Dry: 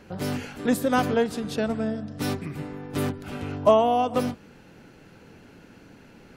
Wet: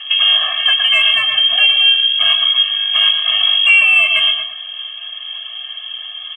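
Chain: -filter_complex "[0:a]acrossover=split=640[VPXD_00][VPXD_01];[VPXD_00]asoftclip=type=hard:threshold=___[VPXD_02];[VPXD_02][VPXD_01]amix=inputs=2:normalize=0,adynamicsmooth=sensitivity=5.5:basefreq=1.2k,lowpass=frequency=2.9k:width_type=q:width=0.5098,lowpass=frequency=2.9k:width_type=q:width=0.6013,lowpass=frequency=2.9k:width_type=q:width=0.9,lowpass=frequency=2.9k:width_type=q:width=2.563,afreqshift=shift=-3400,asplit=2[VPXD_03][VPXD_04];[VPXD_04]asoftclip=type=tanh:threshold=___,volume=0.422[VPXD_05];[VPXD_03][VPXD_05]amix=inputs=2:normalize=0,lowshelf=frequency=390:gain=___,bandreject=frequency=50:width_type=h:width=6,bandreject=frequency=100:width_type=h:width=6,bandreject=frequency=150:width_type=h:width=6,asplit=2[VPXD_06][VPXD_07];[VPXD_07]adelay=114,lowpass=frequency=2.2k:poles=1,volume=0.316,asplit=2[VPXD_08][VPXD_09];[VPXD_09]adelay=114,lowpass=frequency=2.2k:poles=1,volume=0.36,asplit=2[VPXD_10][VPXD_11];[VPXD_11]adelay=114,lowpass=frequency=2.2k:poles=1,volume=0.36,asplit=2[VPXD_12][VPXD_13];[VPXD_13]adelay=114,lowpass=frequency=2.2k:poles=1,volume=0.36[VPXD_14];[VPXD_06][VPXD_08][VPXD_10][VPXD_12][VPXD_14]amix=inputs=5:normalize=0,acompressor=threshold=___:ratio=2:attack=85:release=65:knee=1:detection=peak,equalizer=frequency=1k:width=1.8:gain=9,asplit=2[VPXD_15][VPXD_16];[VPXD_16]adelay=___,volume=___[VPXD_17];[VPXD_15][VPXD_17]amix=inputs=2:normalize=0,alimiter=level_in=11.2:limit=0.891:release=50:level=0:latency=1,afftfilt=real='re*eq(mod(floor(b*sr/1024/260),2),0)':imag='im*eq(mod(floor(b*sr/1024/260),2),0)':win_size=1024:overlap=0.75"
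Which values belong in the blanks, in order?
0.0668, 0.158, -8.5, 0.00891, 16, 0.299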